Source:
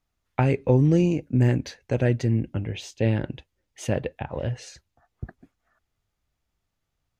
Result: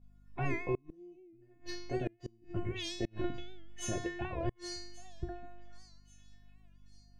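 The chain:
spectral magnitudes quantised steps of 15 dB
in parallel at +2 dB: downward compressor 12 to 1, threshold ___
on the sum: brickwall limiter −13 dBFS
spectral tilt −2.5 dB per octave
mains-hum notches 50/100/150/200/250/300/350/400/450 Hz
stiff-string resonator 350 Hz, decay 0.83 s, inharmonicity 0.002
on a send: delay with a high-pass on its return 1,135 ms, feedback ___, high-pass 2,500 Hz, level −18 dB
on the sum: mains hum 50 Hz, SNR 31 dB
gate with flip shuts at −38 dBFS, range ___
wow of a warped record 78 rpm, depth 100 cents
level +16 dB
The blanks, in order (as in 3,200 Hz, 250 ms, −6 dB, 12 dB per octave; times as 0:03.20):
−30 dBFS, 50%, −34 dB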